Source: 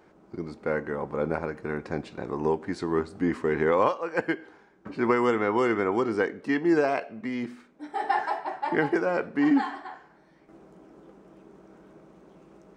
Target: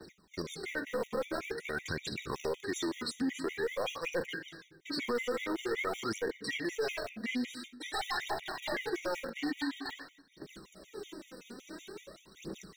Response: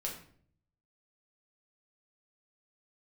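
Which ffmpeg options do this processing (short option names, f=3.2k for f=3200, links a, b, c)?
-filter_complex "[0:a]aphaser=in_gain=1:out_gain=1:delay=4.4:decay=0.75:speed=0.48:type=triangular,agate=range=-33dB:threshold=-45dB:ratio=3:detection=peak,asplit=2[a][b];[1:a]atrim=start_sample=2205[c];[b][c]afir=irnorm=-1:irlink=0,volume=-9dB[d];[a][d]amix=inputs=2:normalize=0,acompressor=threshold=-42dB:ratio=2,equalizer=f=500:t=o:w=1:g=6,equalizer=f=2k:t=o:w=1:g=3,equalizer=f=4k:t=o:w=1:g=10,acrossover=split=540|1000[e][f][g];[f]acrusher=bits=4:dc=4:mix=0:aa=0.000001[h];[g]crystalizer=i=5:c=0[i];[e][h][i]amix=inputs=3:normalize=0,alimiter=limit=-24dB:level=0:latency=1:release=30,asoftclip=type=tanh:threshold=-27dB,afftfilt=real='re*gt(sin(2*PI*5.3*pts/sr)*(1-2*mod(floor(b*sr/1024/1900),2)),0)':imag='im*gt(sin(2*PI*5.3*pts/sr)*(1-2*mod(floor(b*sr/1024/1900),2)),0)':win_size=1024:overlap=0.75,volume=2.5dB"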